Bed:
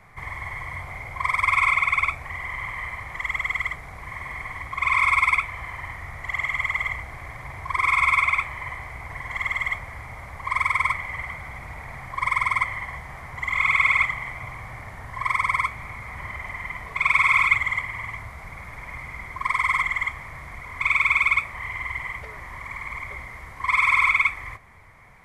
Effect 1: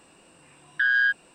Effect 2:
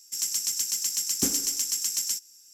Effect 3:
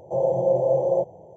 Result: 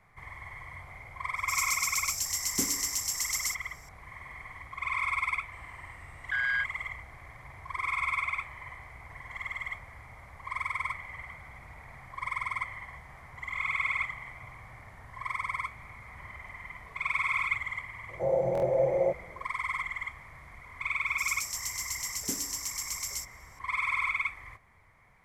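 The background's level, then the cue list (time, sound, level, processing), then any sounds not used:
bed -11 dB
1.36 s: add 2 -4 dB
5.52 s: add 1 -8.5 dB
18.09 s: add 3 -5 dB + buffer glitch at 0.44 s, samples 1024, times 3
21.06 s: add 2 -8 dB

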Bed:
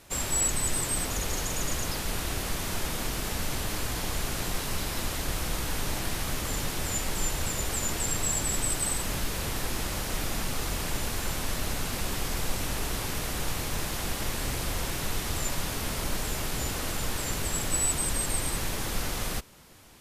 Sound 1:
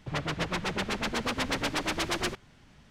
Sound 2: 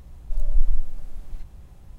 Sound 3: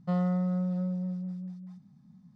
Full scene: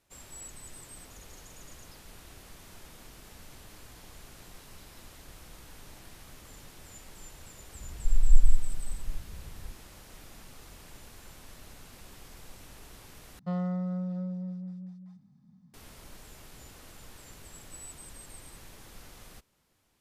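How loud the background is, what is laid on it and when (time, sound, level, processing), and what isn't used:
bed -19 dB
7.75 s: add 2 + inverse Chebyshev low-pass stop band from 540 Hz
13.39 s: replace with 3 -3.5 dB
not used: 1

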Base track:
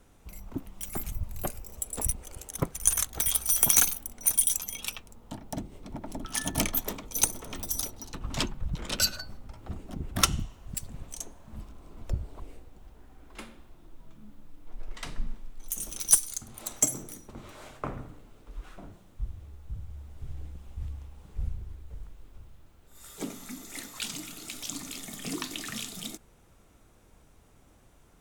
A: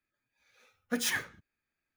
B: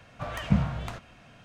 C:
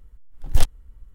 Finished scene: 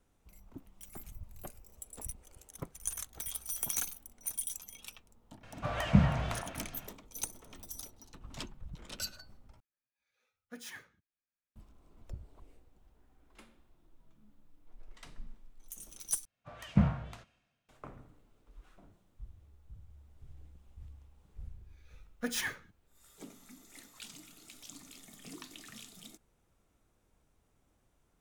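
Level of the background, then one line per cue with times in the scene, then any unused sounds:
base track -13.5 dB
5.43 s: add B -0.5 dB + repeats whose band climbs or falls 117 ms, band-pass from 750 Hz, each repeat 1.4 oct, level -2 dB
9.60 s: replace with A -16 dB
16.25 s: replace with B -10.5 dB + three bands expanded up and down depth 100%
21.31 s: add A -4 dB
not used: C

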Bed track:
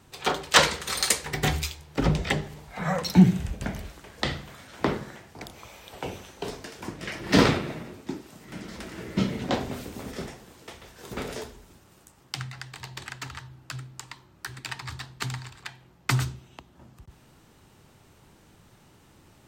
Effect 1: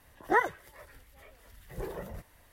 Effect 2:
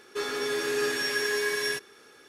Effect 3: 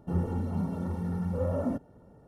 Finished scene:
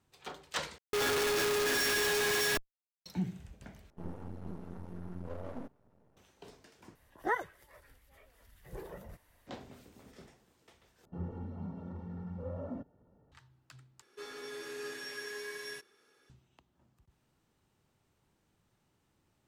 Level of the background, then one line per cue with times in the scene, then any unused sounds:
bed track -19 dB
0.78 s: replace with 2 + Schmitt trigger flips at -41 dBFS
3.90 s: replace with 3 -9 dB + half-wave rectifier
6.95 s: replace with 1 -7 dB
11.05 s: replace with 3 -11 dB + low-pass 3.5 kHz
14.02 s: replace with 2 -14.5 dB

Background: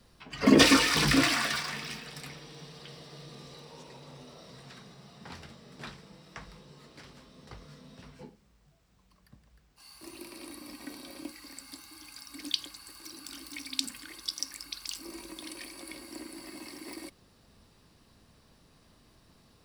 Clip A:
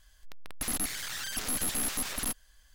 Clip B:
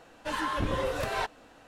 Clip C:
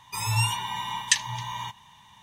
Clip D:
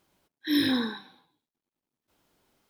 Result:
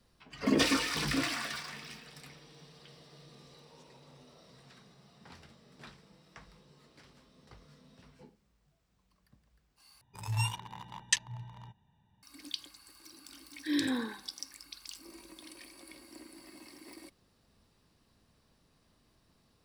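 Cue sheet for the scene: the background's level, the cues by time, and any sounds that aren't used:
background -8 dB
10.01 s: replace with C -6 dB + local Wiener filter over 41 samples
13.19 s: add D -5 dB + tone controls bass -3 dB, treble -14 dB
not used: A, B

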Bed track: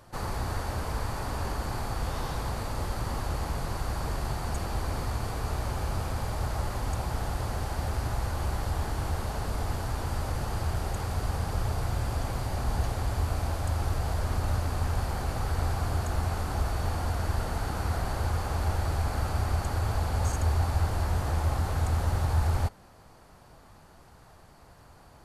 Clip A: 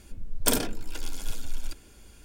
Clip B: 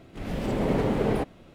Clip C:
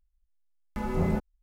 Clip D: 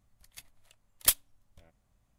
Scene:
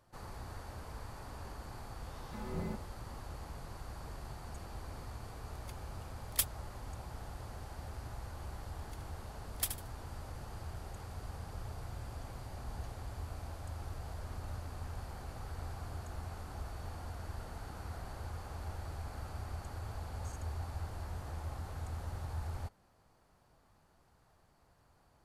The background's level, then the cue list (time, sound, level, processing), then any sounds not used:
bed track -14.5 dB
1.57 s: add C -12.5 dB
5.31 s: add D -8 dB
8.55 s: add D -12 dB + feedback delay 75 ms, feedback 23%, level -8.5 dB
not used: A, B

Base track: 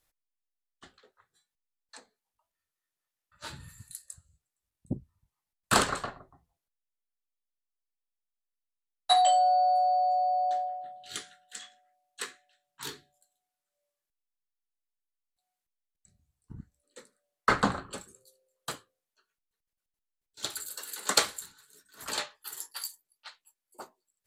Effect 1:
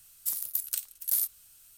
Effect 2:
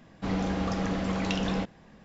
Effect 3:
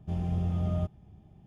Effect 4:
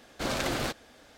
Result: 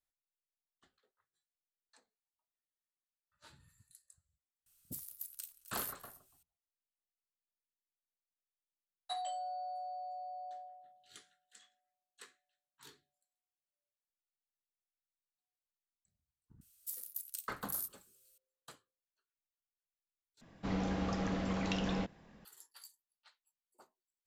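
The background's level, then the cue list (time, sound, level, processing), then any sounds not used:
base track -18 dB
4.66 s: add 1 -15 dB + delay 260 ms -15.5 dB
16.61 s: add 1 -6.5 dB + amplifier tone stack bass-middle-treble 5-5-5
20.41 s: replace with 2 -6.5 dB
not used: 3, 4

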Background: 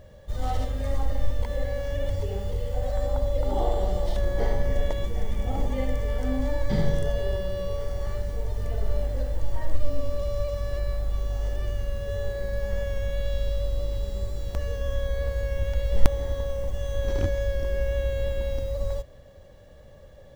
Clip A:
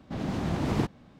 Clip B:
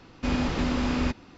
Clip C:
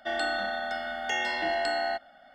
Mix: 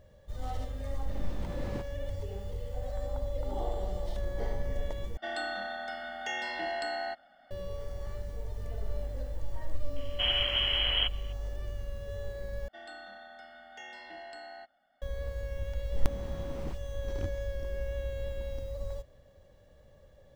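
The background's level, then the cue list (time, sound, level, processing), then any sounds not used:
background -9 dB
0.96 s: add A -13 dB
5.17 s: replace with C -6 dB
9.96 s: add B -4 dB + frequency inversion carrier 3.2 kHz
12.68 s: replace with C -17.5 dB
15.87 s: add A -15.5 dB + phase dispersion highs, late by 69 ms, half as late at 2.9 kHz

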